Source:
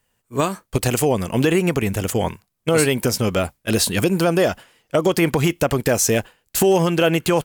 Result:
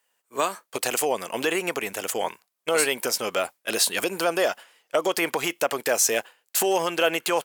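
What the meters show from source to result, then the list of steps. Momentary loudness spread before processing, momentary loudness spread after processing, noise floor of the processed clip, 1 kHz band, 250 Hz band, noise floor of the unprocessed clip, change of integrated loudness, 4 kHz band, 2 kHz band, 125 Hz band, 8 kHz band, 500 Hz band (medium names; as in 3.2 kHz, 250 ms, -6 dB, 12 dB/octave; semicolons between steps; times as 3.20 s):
6 LU, 7 LU, -79 dBFS, -2.0 dB, -13.0 dB, -73 dBFS, -5.0 dB, -1.5 dB, -1.5 dB, -24.0 dB, -1.5 dB, -6.0 dB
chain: high-pass 550 Hz 12 dB/octave; trim -1.5 dB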